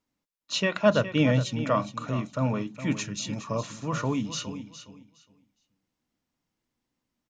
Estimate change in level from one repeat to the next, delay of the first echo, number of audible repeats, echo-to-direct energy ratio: -14.0 dB, 413 ms, 2, -12.0 dB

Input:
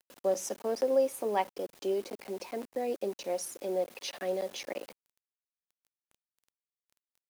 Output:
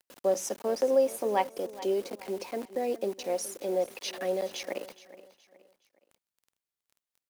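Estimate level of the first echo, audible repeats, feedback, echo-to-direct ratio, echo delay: -17.0 dB, 3, 38%, -16.5 dB, 420 ms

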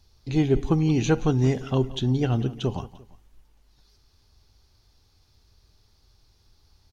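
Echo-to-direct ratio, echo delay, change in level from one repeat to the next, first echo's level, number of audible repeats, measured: -17.0 dB, 173 ms, -7.5 dB, -17.5 dB, 2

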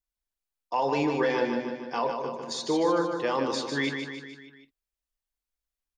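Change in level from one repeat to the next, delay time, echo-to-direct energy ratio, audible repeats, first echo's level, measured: -5.0 dB, 151 ms, -4.5 dB, 5, -6.0 dB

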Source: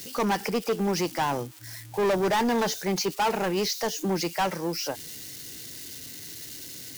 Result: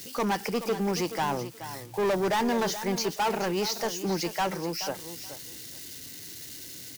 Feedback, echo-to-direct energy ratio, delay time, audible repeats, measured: 18%, -12.0 dB, 427 ms, 2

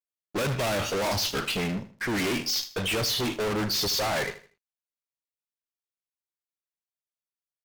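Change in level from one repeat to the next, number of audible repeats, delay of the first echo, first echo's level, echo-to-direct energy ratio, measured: -10.0 dB, 3, 79 ms, -14.5 dB, -14.0 dB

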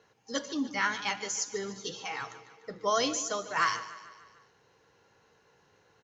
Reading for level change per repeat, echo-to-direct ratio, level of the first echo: -5.0 dB, -13.5 dB, -15.0 dB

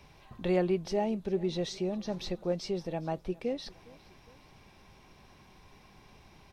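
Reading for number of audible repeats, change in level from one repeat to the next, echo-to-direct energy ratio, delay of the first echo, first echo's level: 2, -5.5 dB, -22.0 dB, 409 ms, -23.0 dB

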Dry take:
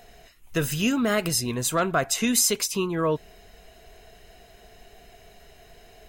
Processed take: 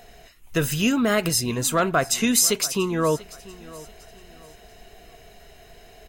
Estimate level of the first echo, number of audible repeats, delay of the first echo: -20.0 dB, 2, 689 ms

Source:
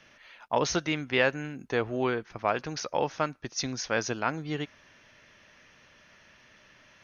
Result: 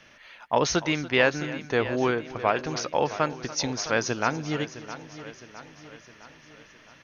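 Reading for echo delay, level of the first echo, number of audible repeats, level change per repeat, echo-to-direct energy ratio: 288 ms, -17.0 dB, 7, no regular repeats, -11.0 dB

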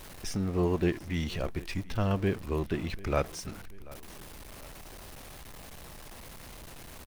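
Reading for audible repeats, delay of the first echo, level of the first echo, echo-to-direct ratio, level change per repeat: 2, 737 ms, -21.0 dB, -20.0 dB, -6.0 dB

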